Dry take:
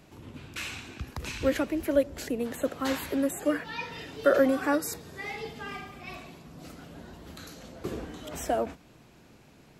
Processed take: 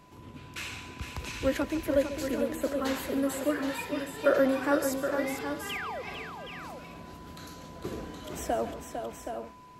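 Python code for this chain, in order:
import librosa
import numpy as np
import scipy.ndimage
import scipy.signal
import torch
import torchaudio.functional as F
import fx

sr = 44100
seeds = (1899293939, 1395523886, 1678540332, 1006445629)

y = fx.spec_paint(x, sr, seeds[0], shape='fall', start_s=5.69, length_s=0.33, low_hz=450.0, high_hz=3500.0, level_db=-35.0)
y = y + 10.0 ** (-55.0 / 20.0) * np.sin(2.0 * np.pi * 1000.0 * np.arange(len(y)) / sr)
y = fx.echo_multitap(y, sr, ms=(145, 452, 772, 835), db=(-14.0, -7.0, -8.0, -16.5))
y = y * 10.0 ** (-2.0 / 20.0)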